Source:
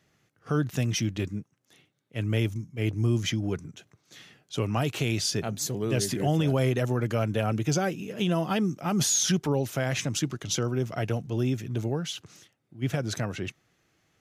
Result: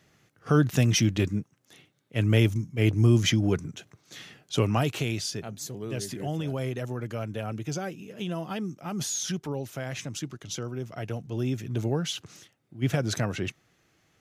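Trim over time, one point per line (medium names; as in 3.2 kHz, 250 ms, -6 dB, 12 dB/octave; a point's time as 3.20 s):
4.56 s +5 dB
5.43 s -6.5 dB
10.91 s -6.5 dB
12.00 s +2.5 dB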